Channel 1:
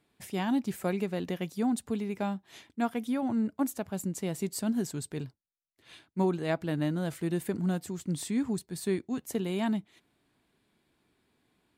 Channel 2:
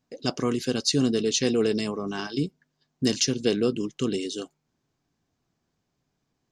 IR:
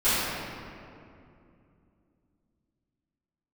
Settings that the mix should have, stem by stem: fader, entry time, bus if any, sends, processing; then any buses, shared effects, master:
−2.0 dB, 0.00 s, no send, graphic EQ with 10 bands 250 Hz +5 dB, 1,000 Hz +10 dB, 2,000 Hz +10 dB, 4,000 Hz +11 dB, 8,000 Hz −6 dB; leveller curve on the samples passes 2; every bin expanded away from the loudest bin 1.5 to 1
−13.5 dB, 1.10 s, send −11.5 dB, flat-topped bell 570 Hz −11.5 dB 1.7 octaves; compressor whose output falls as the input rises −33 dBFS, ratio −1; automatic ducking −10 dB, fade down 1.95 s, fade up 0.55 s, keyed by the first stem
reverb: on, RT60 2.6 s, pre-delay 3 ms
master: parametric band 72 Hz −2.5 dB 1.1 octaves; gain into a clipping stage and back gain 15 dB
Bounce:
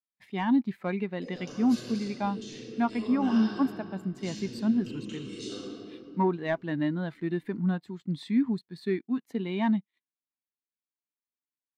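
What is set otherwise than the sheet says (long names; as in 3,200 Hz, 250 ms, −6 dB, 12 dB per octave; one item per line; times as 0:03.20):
stem 1 −2.0 dB → −9.5 dB
stem 2: missing flat-topped bell 570 Hz −11.5 dB 1.7 octaves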